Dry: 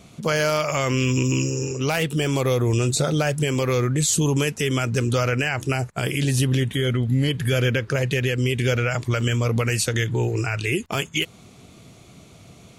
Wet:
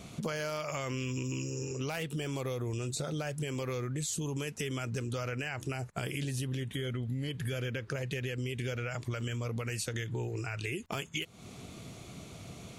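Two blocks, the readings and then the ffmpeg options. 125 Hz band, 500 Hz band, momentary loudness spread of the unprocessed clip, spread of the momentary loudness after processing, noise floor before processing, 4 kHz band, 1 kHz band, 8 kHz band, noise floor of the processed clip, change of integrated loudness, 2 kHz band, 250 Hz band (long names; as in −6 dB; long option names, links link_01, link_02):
−13.5 dB, −14.0 dB, 4 LU, 3 LU, −48 dBFS, −13.5 dB, −13.5 dB, −13.5 dB, −50 dBFS, −14.0 dB, −13.5 dB, −13.5 dB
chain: -af "acompressor=threshold=-34dB:ratio=6"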